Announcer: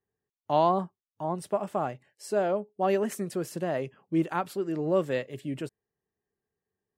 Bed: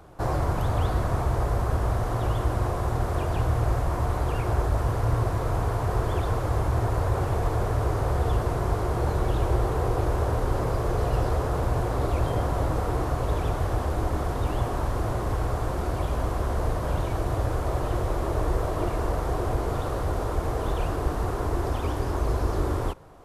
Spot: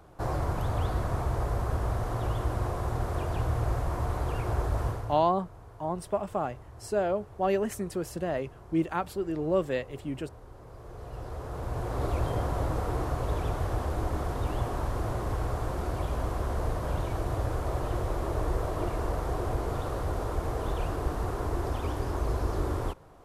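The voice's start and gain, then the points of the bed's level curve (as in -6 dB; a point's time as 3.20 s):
4.60 s, -1.0 dB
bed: 4.87 s -4.5 dB
5.33 s -23.5 dB
10.57 s -23.5 dB
12.05 s -4 dB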